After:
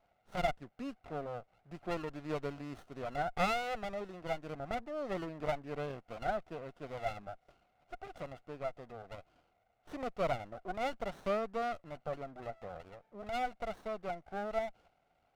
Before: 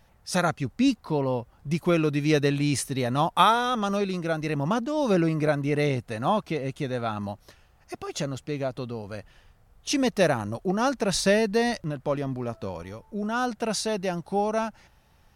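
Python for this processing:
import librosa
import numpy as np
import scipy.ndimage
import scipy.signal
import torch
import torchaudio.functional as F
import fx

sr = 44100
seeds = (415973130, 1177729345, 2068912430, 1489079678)

y = fx.double_bandpass(x, sr, hz=1000.0, octaves=0.93)
y = fx.dynamic_eq(y, sr, hz=980.0, q=1.0, threshold_db=-45.0, ratio=4.0, max_db=-6)
y = fx.running_max(y, sr, window=17)
y = y * librosa.db_to_amplitude(1.5)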